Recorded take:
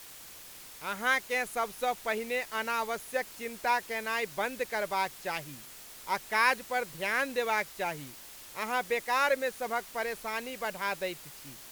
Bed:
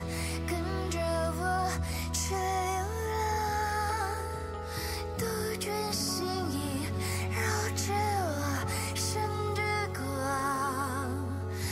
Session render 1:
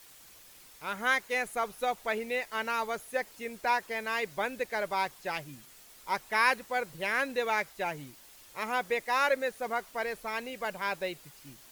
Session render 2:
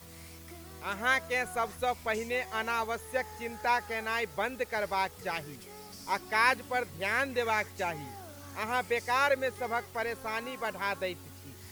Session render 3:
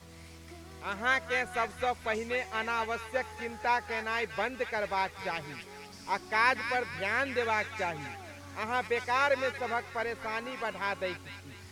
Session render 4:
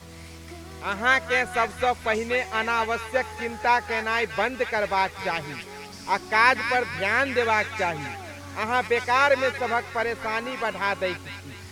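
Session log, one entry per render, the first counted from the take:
broadband denoise 7 dB, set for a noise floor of −49 dBFS
mix in bed −16.5 dB
high-frequency loss of the air 52 metres; delay with a high-pass on its return 236 ms, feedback 45%, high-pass 1,700 Hz, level −6 dB
level +7.5 dB

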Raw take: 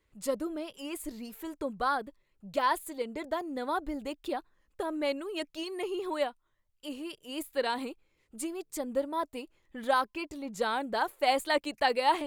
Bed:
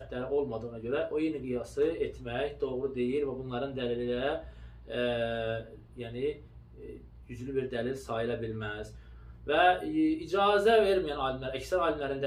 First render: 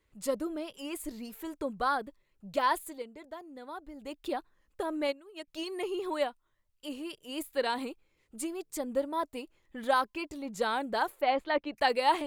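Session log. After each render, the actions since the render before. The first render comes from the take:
0:02.81–0:04.24: duck −11 dB, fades 0.29 s
0:05.07–0:05.48: expander for the loud parts 2.5 to 1, over −38 dBFS
0:11.21–0:11.77: high-frequency loss of the air 290 metres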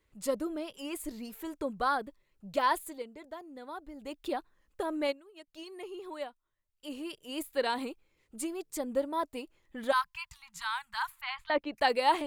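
0:05.13–0:06.98: duck −8.5 dB, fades 0.27 s
0:09.92–0:11.50: Chebyshev band-stop filter 150–960 Hz, order 4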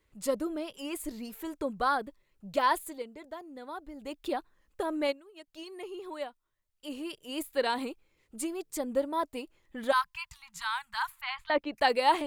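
level +1.5 dB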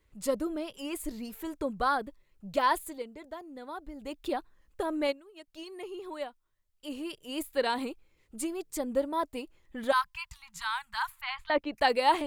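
low-shelf EQ 110 Hz +6.5 dB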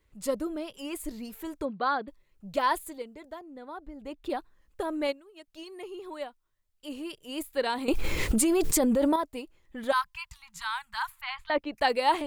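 0:01.65–0:02.08: linear-phase brick-wall band-pass 150–4,800 Hz
0:03.39–0:04.30: high-shelf EQ 3,400 Hz −9 dB
0:07.88–0:09.16: envelope flattener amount 100%

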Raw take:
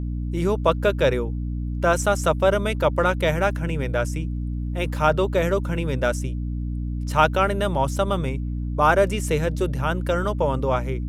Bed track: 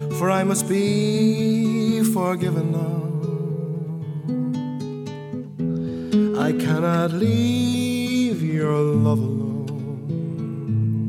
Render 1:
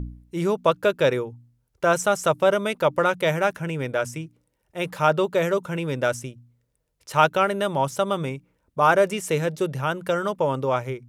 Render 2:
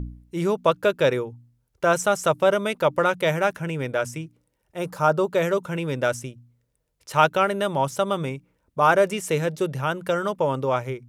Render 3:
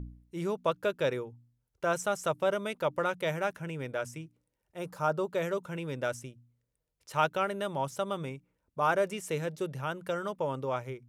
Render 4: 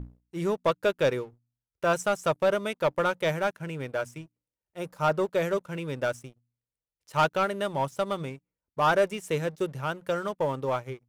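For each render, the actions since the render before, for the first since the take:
hum removal 60 Hz, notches 5
0:04.79–0:05.28: flat-topped bell 2,600 Hz −8.5 dB 1.3 octaves
level −9.5 dB
leveller curve on the samples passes 2; expander for the loud parts 1.5 to 1, over −39 dBFS

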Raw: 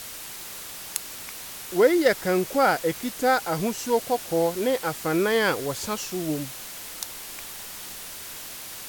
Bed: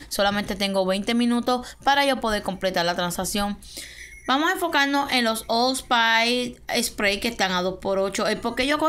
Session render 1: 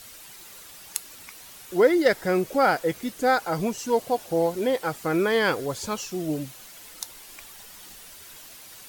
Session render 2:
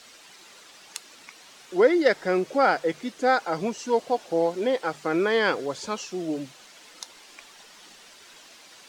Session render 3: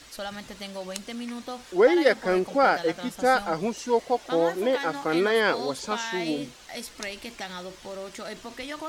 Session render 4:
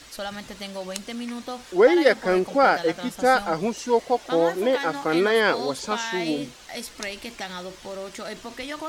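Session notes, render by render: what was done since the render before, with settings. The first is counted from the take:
broadband denoise 9 dB, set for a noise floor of −39 dBFS
three-way crossover with the lows and the highs turned down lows −16 dB, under 180 Hz, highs −22 dB, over 7,400 Hz; mains-hum notches 50/100/150 Hz
mix in bed −14 dB
level +2.5 dB

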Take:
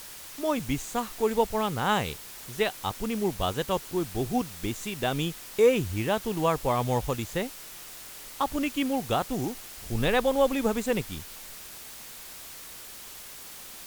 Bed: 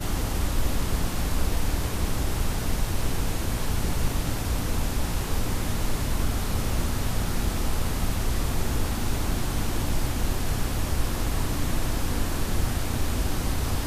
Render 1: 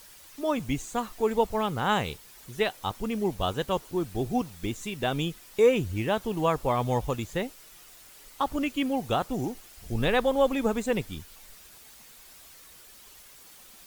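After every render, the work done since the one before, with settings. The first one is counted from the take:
broadband denoise 9 dB, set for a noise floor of −44 dBFS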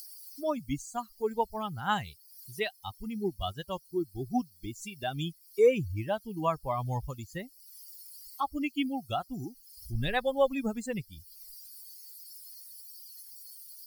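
spectral dynamics exaggerated over time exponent 2
upward compression, threshold −36 dBFS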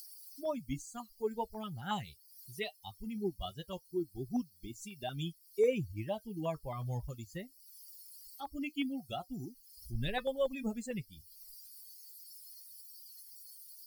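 flanger 0.22 Hz, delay 4.7 ms, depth 1.1 ms, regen −65%
notch on a step sequencer 11 Hz 770–1,600 Hz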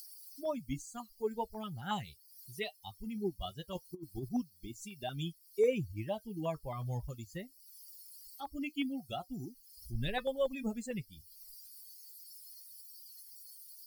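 0:03.75–0:04.29: compressor whose output falls as the input rises −40 dBFS, ratio −0.5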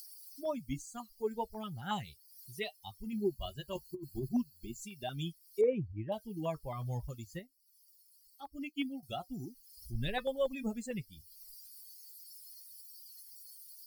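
0:03.12–0:04.83: EQ curve with evenly spaced ripples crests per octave 1.4, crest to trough 10 dB
0:05.61–0:06.12: low-pass filter 1,400 Hz
0:07.39–0:09.03: expander for the loud parts, over −58 dBFS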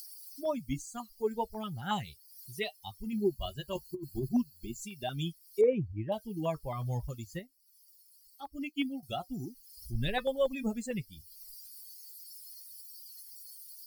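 level +3.5 dB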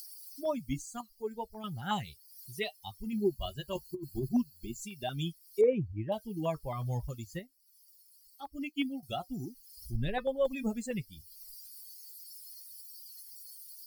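0:01.01–0:01.64: clip gain −5.5 dB
0:09.96–0:10.45: high-shelf EQ 2,500 Hz −11 dB

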